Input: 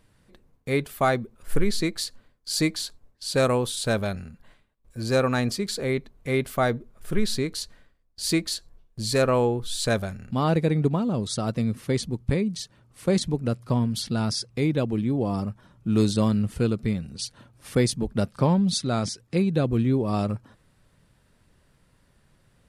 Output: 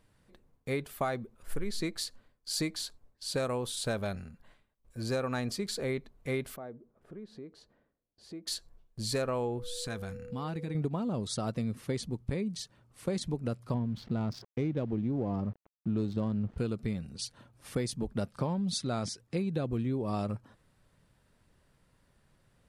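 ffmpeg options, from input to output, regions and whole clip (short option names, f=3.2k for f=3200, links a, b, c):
-filter_complex "[0:a]asettb=1/sr,asplit=3[a][b][c];[a]atrim=end=6.564[d];[b]atrim=start=6.56:end=8.47,asetpts=PTS-STARTPTS,afade=t=in:d=0.004:c=qsin,afade=t=out:st=1.906:d=0.004:c=qsin,bandpass=f=350:t=q:w=0.71,acompressor=threshold=-46dB:ratio=2:attack=3.2:release=140:knee=1:detection=peak[e];[c]atrim=start=8.466[f];[d][e]acrossfade=d=0.004:c1=hsin:c2=qsin[g];[g][f]acrossfade=d=0.004:c1=qsin:c2=hsin,asettb=1/sr,asplit=3[h][i][j];[h]atrim=end=9.584[k];[i]atrim=start=9.58:end=10.75,asetpts=PTS-STARTPTS,afade=t=in:d=0.004:c=qsin,afade=t=out:st=1.166:d=0.004:c=qsin,equalizer=f=550:t=o:w=0.5:g=-12,acompressor=threshold=-30dB:ratio=2.5:attack=3.2:release=140:knee=1:detection=peak,aeval=exprs='val(0)+0.0112*sin(2*PI*490*n/s)':c=same[l];[j]atrim=start=10.746[m];[k][l]acrossfade=d=0.004:c1=hsin:c2=qsin[n];[n][m]acrossfade=d=0.004:c1=qsin:c2=hsin,asettb=1/sr,asplit=3[o][p][q];[o]atrim=end=13.744[r];[p]atrim=start=13.74:end=16.58,asetpts=PTS-STARTPTS,afade=t=in:d=0.004:c=qsin,afade=t=out:st=2.836:d=0.004:c=qsin,tiltshelf=f=780:g=3.5,aeval=exprs='val(0)*gte(abs(val(0)),0.00708)':c=same,adynamicsmooth=sensitivity=3.5:basefreq=1.5k[s];[q]atrim=start=16.576[t];[r][s]acrossfade=d=0.004:c1=hsin:c2=qsin[u];[u][t]acrossfade=d=0.004:c1=qsin:c2=hsin,equalizer=f=760:t=o:w=1.7:g=2,acompressor=threshold=-22dB:ratio=6,volume=-6dB"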